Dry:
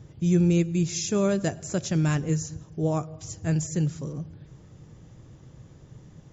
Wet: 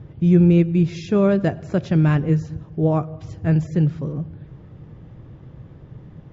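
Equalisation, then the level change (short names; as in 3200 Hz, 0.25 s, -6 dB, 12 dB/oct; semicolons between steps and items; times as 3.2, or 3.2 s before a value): air absorption 360 m; +7.5 dB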